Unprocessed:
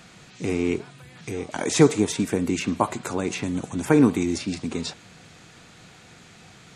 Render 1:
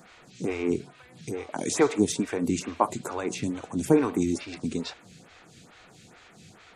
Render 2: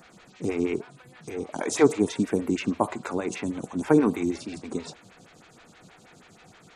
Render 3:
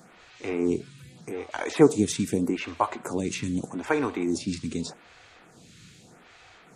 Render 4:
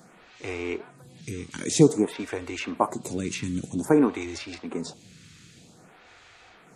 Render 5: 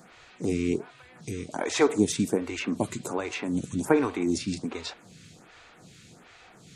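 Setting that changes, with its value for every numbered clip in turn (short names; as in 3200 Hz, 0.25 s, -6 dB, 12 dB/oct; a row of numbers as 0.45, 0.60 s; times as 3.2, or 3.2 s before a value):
photocell phaser, rate: 2.3, 6.3, 0.82, 0.52, 1.3 Hz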